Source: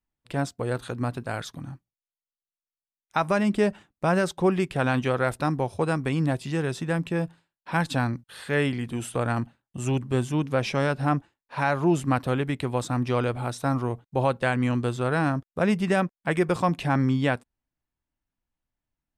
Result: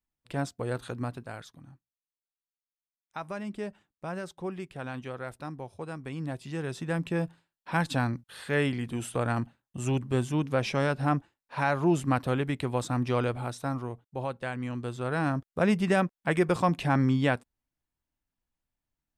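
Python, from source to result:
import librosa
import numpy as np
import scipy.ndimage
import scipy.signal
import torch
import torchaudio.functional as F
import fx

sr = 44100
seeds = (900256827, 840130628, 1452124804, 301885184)

y = fx.gain(x, sr, db=fx.line((0.95, -4.0), (1.58, -13.5), (5.9, -13.5), (7.09, -2.5), (13.26, -2.5), (14.07, -10.0), (14.71, -10.0), (15.46, -1.5)))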